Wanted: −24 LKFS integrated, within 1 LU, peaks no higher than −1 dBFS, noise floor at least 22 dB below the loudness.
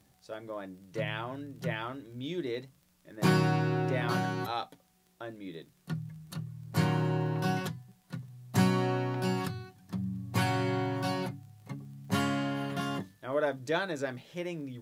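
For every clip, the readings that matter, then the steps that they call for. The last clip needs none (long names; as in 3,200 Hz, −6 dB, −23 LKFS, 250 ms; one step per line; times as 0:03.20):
crackle rate 25 per second; integrated loudness −32.5 LKFS; sample peak −12.5 dBFS; target loudness −24.0 LKFS
→ click removal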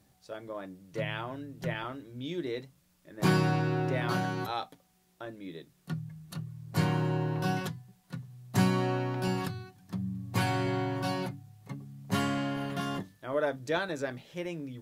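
crackle rate 0.067 per second; integrated loudness −32.5 LKFS; sample peak −12.5 dBFS; target loudness −24.0 LKFS
→ level +8.5 dB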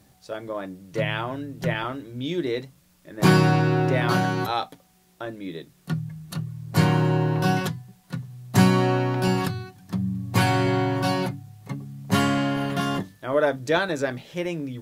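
integrated loudness −24.0 LKFS; sample peak −4.0 dBFS; background noise floor −60 dBFS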